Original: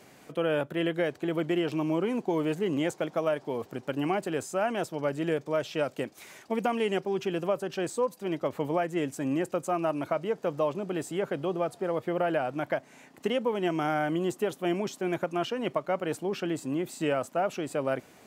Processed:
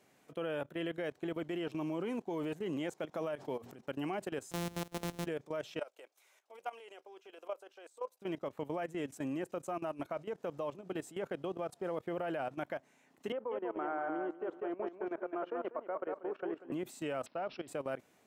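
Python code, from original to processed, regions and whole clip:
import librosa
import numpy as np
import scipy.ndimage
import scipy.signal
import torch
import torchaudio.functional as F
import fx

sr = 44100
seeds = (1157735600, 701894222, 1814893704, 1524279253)

y = fx.chain(x, sr, fx.low_shelf(hz=60.0, db=10.5),
    fx.hum_notches(base_hz=60, count=4),
    fx.pre_swell(db_per_s=49.0), at=(3.14, 3.82))
y = fx.chain(y, sr, fx.sample_sort(block=256),
    fx.peak_eq(hz=1500.0, db=-5.0, octaves=1.7),
    fx.band_squash(depth_pct=70), at=(4.51, 5.26))
y = fx.chain(y, sr, fx.highpass(hz=460.0, slope=24),
    fx.notch(hz=1800.0, q=12.0),
    fx.level_steps(step_db=13), at=(5.79, 8.22))
y = fx.chain(y, sr, fx.cheby1_bandpass(low_hz=370.0, high_hz=1400.0, order=2),
    fx.echo_feedback(ms=192, feedback_pct=29, wet_db=-5),
    fx.band_squash(depth_pct=40), at=(13.32, 16.72))
y = fx.chain(y, sr, fx.low_shelf(hz=140.0, db=-5.0),
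    fx.resample_bad(factor=4, down='none', up='filtered'), at=(17.26, 17.68))
y = fx.low_shelf(y, sr, hz=120.0, db=-4.5)
y = fx.notch(y, sr, hz=4700.0, q=19.0)
y = fx.level_steps(y, sr, step_db=16)
y = F.gain(torch.from_numpy(y), -4.5).numpy()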